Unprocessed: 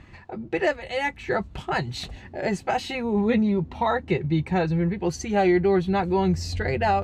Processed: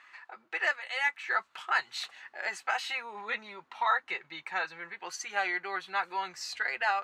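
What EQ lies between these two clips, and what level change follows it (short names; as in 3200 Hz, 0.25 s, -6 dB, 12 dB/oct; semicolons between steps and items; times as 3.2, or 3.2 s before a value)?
resonant high-pass 1300 Hz, resonance Q 2.1; -3.5 dB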